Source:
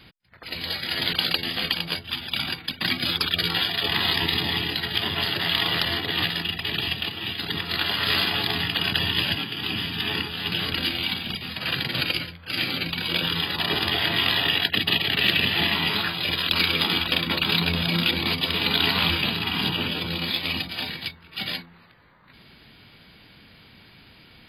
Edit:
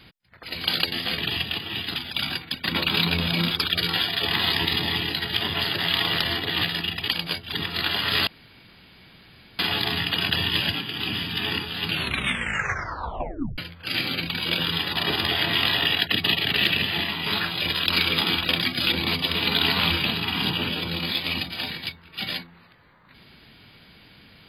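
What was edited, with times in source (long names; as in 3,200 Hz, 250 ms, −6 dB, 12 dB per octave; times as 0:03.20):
0:00.64–0:01.15: remove
0:01.69–0:02.13: swap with 0:06.69–0:07.47
0:02.86–0:03.12: swap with 0:17.24–0:18.06
0:08.22: splice in room tone 1.32 s
0:10.48: tape stop 1.73 s
0:15.18–0:15.89: fade out, to −6.5 dB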